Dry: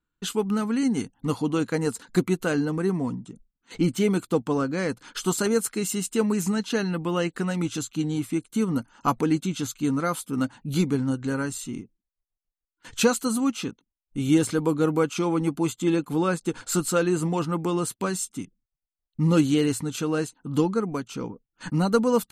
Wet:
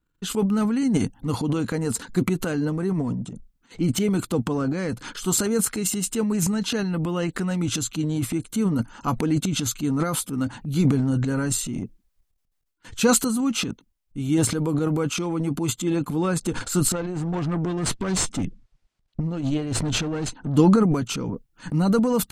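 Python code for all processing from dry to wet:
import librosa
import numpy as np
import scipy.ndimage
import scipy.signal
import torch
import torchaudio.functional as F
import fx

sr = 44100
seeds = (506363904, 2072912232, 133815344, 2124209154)

y = fx.chain(x, sr, fx.over_compress(threshold_db=-27.0, ratio=-0.5),
    fx.tube_stage(drive_db=29.0, bias=0.55),
    fx.air_absorb(metres=87.0), at=(16.92, 20.57))
y = fx.low_shelf(y, sr, hz=190.0, db=8.5)
y = fx.rider(y, sr, range_db=10, speed_s=2.0)
y = fx.transient(y, sr, attack_db=-1, sustain_db=12)
y = y * 10.0 ** (-3.0 / 20.0)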